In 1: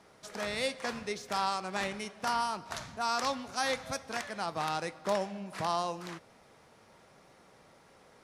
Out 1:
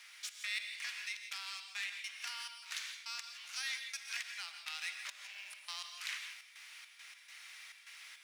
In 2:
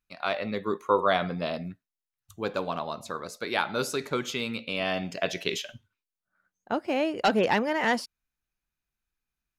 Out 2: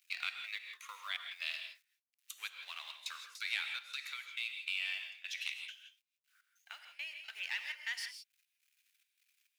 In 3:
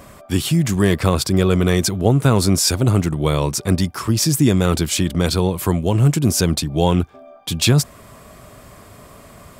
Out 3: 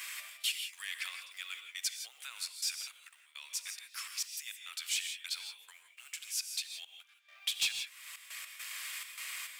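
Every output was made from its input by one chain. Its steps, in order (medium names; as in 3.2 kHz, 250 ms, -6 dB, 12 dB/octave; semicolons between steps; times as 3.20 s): companding laws mixed up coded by mu; compression 3:1, threshold -34 dBFS; ladder high-pass 1.9 kHz, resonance 40%; trance gate "xx.x.xxx." 103 bpm -24 dB; saturation -29 dBFS; gated-style reverb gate 190 ms rising, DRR 6 dB; gain riding within 4 dB 2 s; trim +7.5 dB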